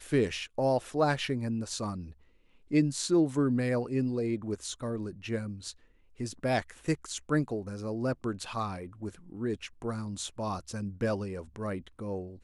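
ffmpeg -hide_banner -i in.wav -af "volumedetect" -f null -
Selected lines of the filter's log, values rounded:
mean_volume: -32.0 dB
max_volume: -14.3 dB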